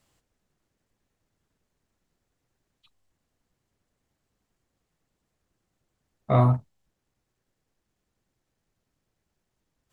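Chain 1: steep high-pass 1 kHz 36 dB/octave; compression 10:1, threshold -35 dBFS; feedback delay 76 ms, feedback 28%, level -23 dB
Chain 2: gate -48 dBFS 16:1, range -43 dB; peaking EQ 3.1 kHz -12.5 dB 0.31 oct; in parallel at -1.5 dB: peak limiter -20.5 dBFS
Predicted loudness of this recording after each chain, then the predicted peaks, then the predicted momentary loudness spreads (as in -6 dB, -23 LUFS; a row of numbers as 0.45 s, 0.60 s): -42.0 LUFS, -21.0 LUFS; -27.0 dBFS, -7.0 dBFS; 9 LU, 6 LU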